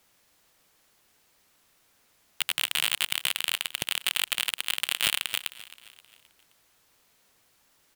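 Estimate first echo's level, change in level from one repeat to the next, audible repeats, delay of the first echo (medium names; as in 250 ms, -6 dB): -17.0 dB, -6.5 dB, 3, 263 ms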